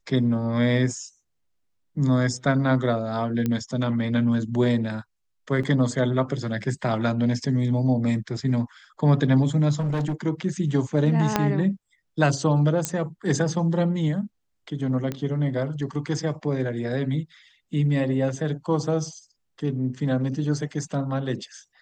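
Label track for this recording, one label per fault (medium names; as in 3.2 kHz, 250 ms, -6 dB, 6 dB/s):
3.460000	3.460000	pop -13 dBFS
5.630000	5.630000	dropout 4.6 ms
9.790000	10.140000	clipped -21.5 dBFS
11.360000	11.360000	pop -5 dBFS
12.850000	12.850000	pop -7 dBFS
15.120000	15.120000	pop -16 dBFS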